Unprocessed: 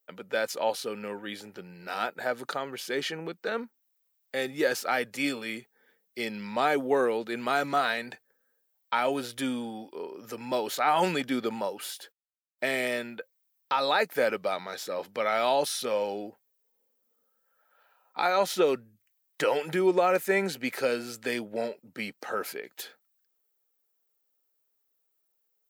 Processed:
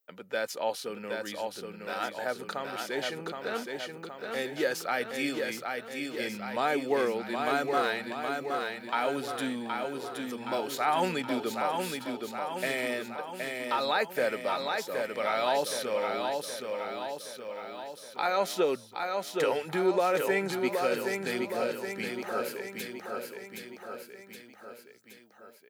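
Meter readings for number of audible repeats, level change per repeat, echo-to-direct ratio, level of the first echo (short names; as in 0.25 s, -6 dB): 5, -4.5 dB, -2.5 dB, -4.5 dB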